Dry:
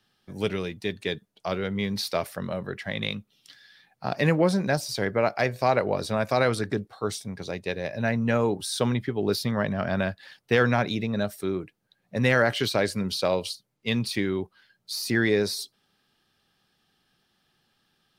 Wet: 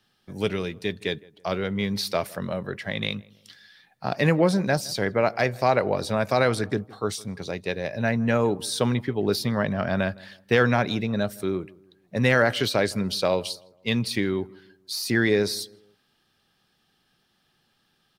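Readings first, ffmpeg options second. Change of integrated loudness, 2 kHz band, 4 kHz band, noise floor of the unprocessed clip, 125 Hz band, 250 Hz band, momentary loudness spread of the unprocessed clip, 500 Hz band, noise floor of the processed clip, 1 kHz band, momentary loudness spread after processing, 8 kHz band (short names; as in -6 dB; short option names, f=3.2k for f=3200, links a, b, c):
+1.5 dB, +1.5 dB, +1.5 dB, -73 dBFS, +1.5 dB, +1.5 dB, 11 LU, +1.5 dB, -69 dBFS, +1.5 dB, 11 LU, +1.5 dB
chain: -filter_complex "[0:a]asplit=2[a][b];[b]adelay=161,lowpass=f=1.4k:p=1,volume=-22dB,asplit=2[c][d];[d]adelay=161,lowpass=f=1.4k:p=1,volume=0.42,asplit=2[e][f];[f]adelay=161,lowpass=f=1.4k:p=1,volume=0.42[g];[a][c][e][g]amix=inputs=4:normalize=0,volume=1.5dB"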